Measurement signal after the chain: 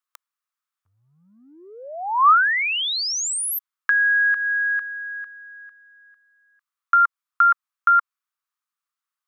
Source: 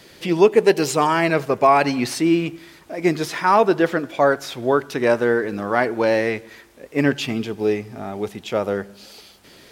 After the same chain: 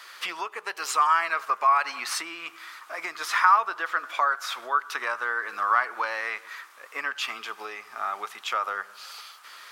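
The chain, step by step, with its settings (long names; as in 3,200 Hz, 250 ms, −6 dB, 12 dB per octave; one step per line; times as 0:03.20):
downward compressor 6 to 1, threshold −23 dBFS
high-pass with resonance 1,200 Hz, resonance Q 4.9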